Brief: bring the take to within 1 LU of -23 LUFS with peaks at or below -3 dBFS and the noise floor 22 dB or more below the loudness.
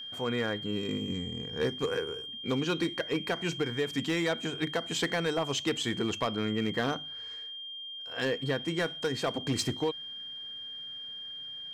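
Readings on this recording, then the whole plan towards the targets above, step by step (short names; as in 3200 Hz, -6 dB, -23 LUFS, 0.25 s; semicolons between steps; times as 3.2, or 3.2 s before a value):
clipped 1.0%; flat tops at -22.5 dBFS; steady tone 3200 Hz; tone level -39 dBFS; loudness -32.5 LUFS; peak -22.5 dBFS; loudness target -23.0 LUFS
-> clip repair -22.5 dBFS; notch 3200 Hz, Q 30; gain +9.5 dB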